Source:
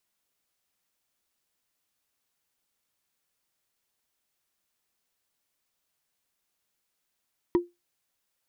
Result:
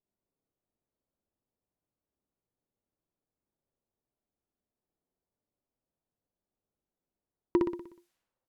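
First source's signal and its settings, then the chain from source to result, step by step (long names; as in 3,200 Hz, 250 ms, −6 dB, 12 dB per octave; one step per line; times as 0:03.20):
struck wood, lowest mode 349 Hz, decay 0.20 s, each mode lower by 9.5 dB, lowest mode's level −15 dB
low-pass that shuts in the quiet parts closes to 450 Hz, open at −49 dBFS
on a send: repeating echo 61 ms, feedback 52%, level −3 dB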